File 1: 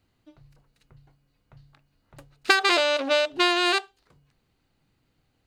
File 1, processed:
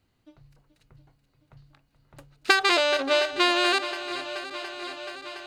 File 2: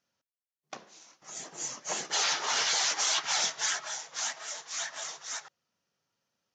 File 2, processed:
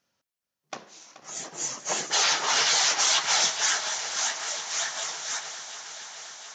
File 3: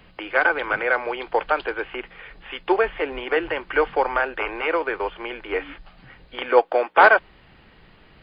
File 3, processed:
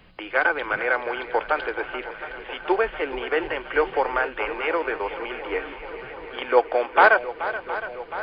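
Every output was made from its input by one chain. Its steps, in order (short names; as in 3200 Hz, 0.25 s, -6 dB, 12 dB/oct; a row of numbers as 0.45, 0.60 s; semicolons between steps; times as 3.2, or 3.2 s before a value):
swung echo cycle 0.715 s, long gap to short 1.5:1, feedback 67%, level -13.5 dB; match loudness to -24 LUFS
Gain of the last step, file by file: -0.5, +5.5, -2.0 dB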